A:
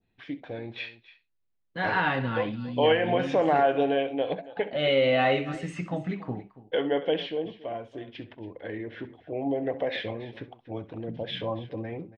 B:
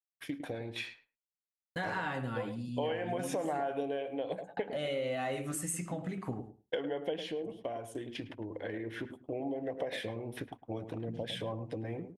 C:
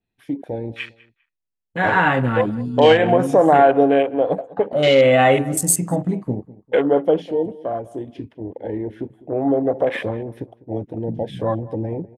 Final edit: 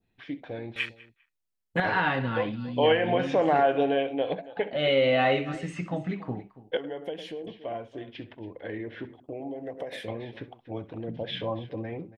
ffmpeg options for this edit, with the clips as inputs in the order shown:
-filter_complex "[1:a]asplit=2[a][b];[0:a]asplit=4[c][d][e][f];[c]atrim=end=0.762[g];[2:a]atrim=start=0.758:end=1.802[h];[d]atrim=start=1.798:end=6.772[i];[a]atrim=start=6.768:end=7.472[j];[e]atrim=start=7.468:end=9.202[k];[b]atrim=start=9.198:end=10.082[l];[f]atrim=start=10.078[m];[g][h]acrossfade=d=0.004:c1=hsin:c2=hsin[n];[n][i]acrossfade=d=0.004:c1=hsin:c2=hsin[o];[o][j]acrossfade=d=0.004:c1=hsin:c2=hsin[p];[p][k]acrossfade=d=0.004:c1=hsin:c2=hsin[q];[q][l]acrossfade=d=0.004:c1=hsin:c2=hsin[r];[r][m]acrossfade=d=0.004:c1=hsin:c2=hsin"

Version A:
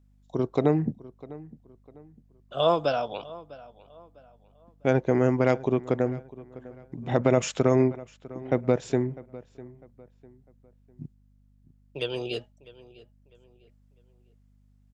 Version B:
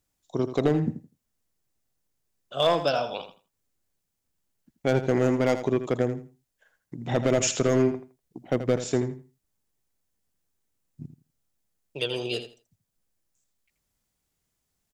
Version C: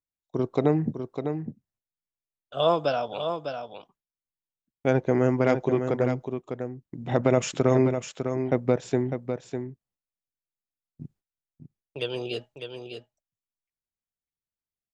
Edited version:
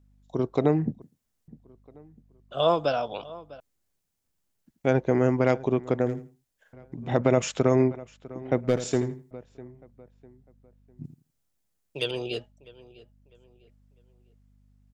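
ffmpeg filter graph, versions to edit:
-filter_complex "[1:a]asplit=5[a][b][c][d][e];[0:a]asplit=6[f][g][h][i][j][k];[f]atrim=end=1.022[l];[a]atrim=start=1.018:end=1.482[m];[g]atrim=start=1.478:end=3.602[n];[b]atrim=start=3.598:end=4.862[o];[h]atrim=start=4.858:end=6.062[p];[c]atrim=start=6.058:end=6.732[q];[i]atrim=start=6.728:end=8.682[r];[d]atrim=start=8.678:end=9.312[s];[j]atrim=start=9.308:end=11.042[t];[e]atrim=start=11.038:end=12.112[u];[k]atrim=start=12.108[v];[l][m]acrossfade=d=0.004:c1=hsin:c2=hsin[w];[w][n]acrossfade=d=0.004:c1=hsin:c2=hsin[x];[x][o]acrossfade=d=0.004:c1=hsin:c2=hsin[y];[y][p]acrossfade=d=0.004:c1=hsin:c2=hsin[z];[z][q]acrossfade=d=0.004:c1=hsin:c2=hsin[aa];[aa][r]acrossfade=d=0.004:c1=hsin:c2=hsin[ab];[ab][s]acrossfade=d=0.004:c1=hsin:c2=hsin[ac];[ac][t]acrossfade=d=0.004:c1=hsin:c2=hsin[ad];[ad][u]acrossfade=d=0.004:c1=hsin:c2=hsin[ae];[ae][v]acrossfade=d=0.004:c1=hsin:c2=hsin"

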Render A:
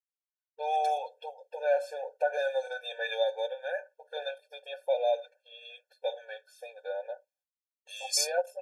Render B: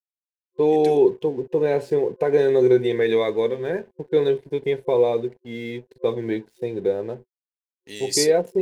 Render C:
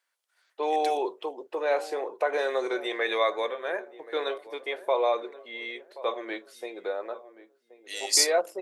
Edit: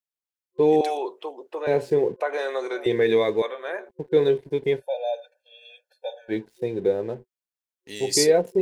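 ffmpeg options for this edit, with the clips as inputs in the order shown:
-filter_complex "[2:a]asplit=3[a][b][c];[1:a]asplit=5[d][e][f][g][h];[d]atrim=end=0.812[i];[a]atrim=start=0.808:end=1.672[j];[e]atrim=start=1.668:end=2.202[k];[b]atrim=start=2.198:end=2.862[l];[f]atrim=start=2.858:end=3.422[m];[c]atrim=start=3.418:end=3.892[n];[g]atrim=start=3.888:end=4.83[o];[0:a]atrim=start=4.77:end=6.34[p];[h]atrim=start=6.28[q];[i][j]acrossfade=d=0.004:c1=hsin:c2=hsin[r];[r][k]acrossfade=d=0.004:c1=hsin:c2=hsin[s];[s][l]acrossfade=d=0.004:c1=hsin:c2=hsin[t];[t][m]acrossfade=d=0.004:c1=hsin:c2=hsin[u];[u][n]acrossfade=d=0.004:c1=hsin:c2=hsin[v];[v][o]acrossfade=d=0.004:c1=hsin:c2=hsin[w];[w][p]acrossfade=d=0.06:c1=tri:c2=tri[x];[x][q]acrossfade=d=0.06:c1=tri:c2=tri"

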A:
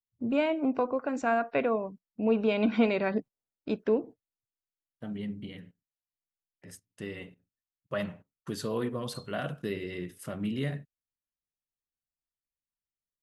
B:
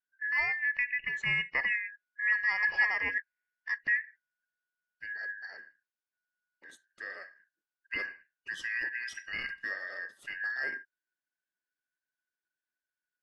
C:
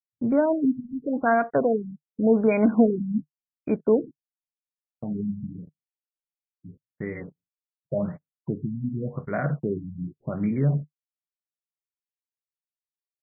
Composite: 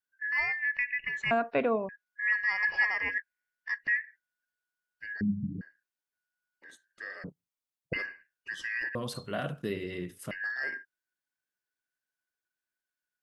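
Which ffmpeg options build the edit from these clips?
-filter_complex "[0:a]asplit=2[a][b];[2:a]asplit=2[c][d];[1:a]asplit=5[e][f][g][h][i];[e]atrim=end=1.312[j];[a]atrim=start=1.308:end=1.892[k];[f]atrim=start=1.888:end=5.212[l];[c]atrim=start=5.208:end=5.612[m];[g]atrim=start=5.608:end=7.242[n];[d]atrim=start=7.238:end=7.932[o];[h]atrim=start=7.928:end=8.952[p];[b]atrim=start=8.948:end=10.312[q];[i]atrim=start=10.308[r];[j][k]acrossfade=d=0.004:c1=hsin:c2=hsin[s];[s][l]acrossfade=d=0.004:c1=hsin:c2=hsin[t];[t][m]acrossfade=d=0.004:c1=hsin:c2=hsin[u];[u][n]acrossfade=d=0.004:c1=hsin:c2=hsin[v];[v][o]acrossfade=d=0.004:c1=hsin:c2=hsin[w];[w][p]acrossfade=d=0.004:c1=hsin:c2=hsin[x];[x][q]acrossfade=d=0.004:c1=hsin:c2=hsin[y];[y][r]acrossfade=d=0.004:c1=hsin:c2=hsin"

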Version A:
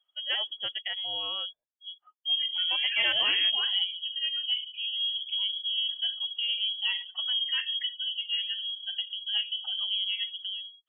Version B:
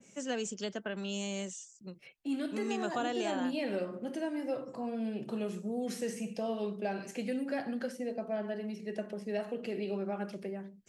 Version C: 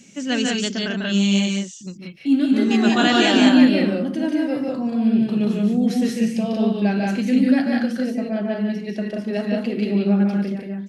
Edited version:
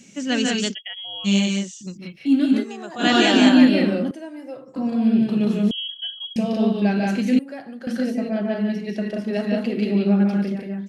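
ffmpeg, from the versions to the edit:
-filter_complex "[0:a]asplit=2[a][b];[1:a]asplit=3[c][d][e];[2:a]asplit=6[f][g][h][i][j][k];[f]atrim=end=0.75[l];[a]atrim=start=0.71:end=1.28[m];[g]atrim=start=1.24:end=2.66[n];[c]atrim=start=2.56:end=3.07[o];[h]atrim=start=2.97:end=4.112[p];[d]atrim=start=4.108:end=4.762[q];[i]atrim=start=4.758:end=5.712[r];[b]atrim=start=5.708:end=6.362[s];[j]atrim=start=6.358:end=7.392[t];[e]atrim=start=7.388:end=7.872[u];[k]atrim=start=7.868[v];[l][m]acrossfade=d=0.04:c1=tri:c2=tri[w];[w][n]acrossfade=d=0.04:c1=tri:c2=tri[x];[x][o]acrossfade=d=0.1:c1=tri:c2=tri[y];[y][p]acrossfade=d=0.1:c1=tri:c2=tri[z];[z][q]acrossfade=d=0.004:c1=hsin:c2=hsin[aa];[aa][r]acrossfade=d=0.004:c1=hsin:c2=hsin[ab];[ab][s]acrossfade=d=0.004:c1=hsin:c2=hsin[ac];[ac][t]acrossfade=d=0.004:c1=hsin:c2=hsin[ad];[ad][u]acrossfade=d=0.004:c1=hsin:c2=hsin[ae];[ae][v]acrossfade=d=0.004:c1=hsin:c2=hsin"

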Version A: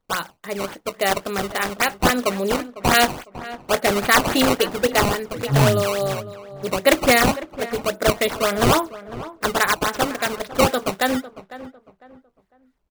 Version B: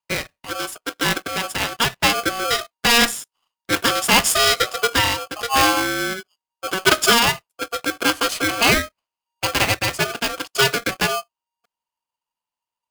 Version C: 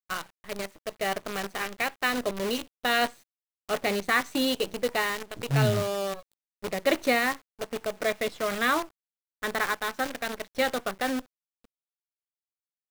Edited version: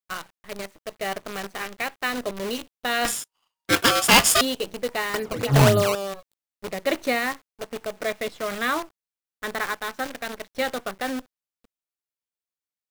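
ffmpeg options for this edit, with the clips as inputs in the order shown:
-filter_complex "[2:a]asplit=3[a][b][c];[a]atrim=end=3.052[d];[1:a]atrim=start=3.048:end=4.412[e];[b]atrim=start=4.408:end=5.142[f];[0:a]atrim=start=5.138:end=5.952[g];[c]atrim=start=5.948[h];[d][e]acrossfade=d=0.004:c1=hsin:c2=hsin[i];[i][f]acrossfade=d=0.004:c1=hsin:c2=hsin[j];[j][g]acrossfade=d=0.004:c1=hsin:c2=hsin[k];[k][h]acrossfade=d=0.004:c1=hsin:c2=hsin"

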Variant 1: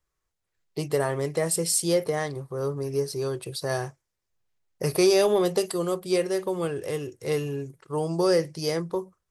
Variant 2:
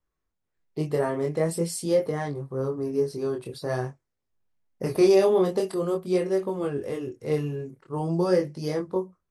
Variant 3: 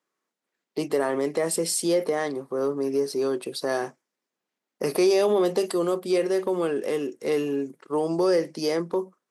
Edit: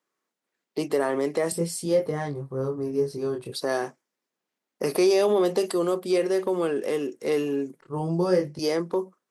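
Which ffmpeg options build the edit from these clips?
-filter_complex "[1:a]asplit=2[a][b];[2:a]asplit=3[c][d][e];[c]atrim=end=1.522[f];[a]atrim=start=1.518:end=3.522[g];[d]atrim=start=3.518:end=7.812[h];[b]atrim=start=7.808:end=8.592[i];[e]atrim=start=8.588[j];[f][g]acrossfade=d=0.004:c1=hsin:c2=hsin[k];[k][h]acrossfade=d=0.004:c1=hsin:c2=hsin[l];[l][i]acrossfade=d=0.004:c1=hsin:c2=hsin[m];[m][j]acrossfade=d=0.004:c1=hsin:c2=hsin"

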